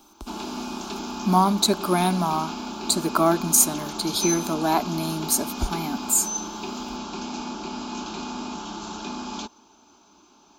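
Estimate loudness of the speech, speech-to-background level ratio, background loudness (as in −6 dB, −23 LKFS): −22.5 LKFS, 9.5 dB, −32.0 LKFS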